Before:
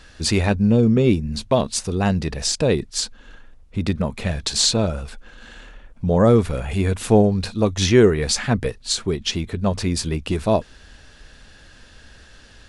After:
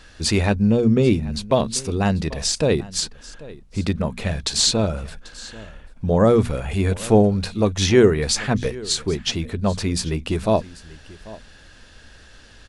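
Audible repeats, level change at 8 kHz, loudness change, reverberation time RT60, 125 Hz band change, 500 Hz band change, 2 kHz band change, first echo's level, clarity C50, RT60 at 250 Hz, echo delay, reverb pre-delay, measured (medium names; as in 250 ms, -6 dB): 1, 0.0 dB, -0.5 dB, no reverb, -1.0 dB, 0.0 dB, 0.0 dB, -20.0 dB, no reverb, no reverb, 789 ms, no reverb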